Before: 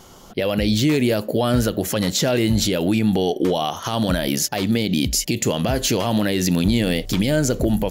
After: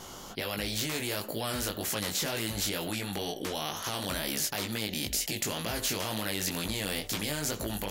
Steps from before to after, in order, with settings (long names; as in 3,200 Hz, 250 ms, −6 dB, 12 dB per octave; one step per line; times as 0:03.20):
chorus effect 2.1 Hz, delay 18 ms, depth 2.6 ms
every bin compressed towards the loudest bin 2 to 1
level −6.5 dB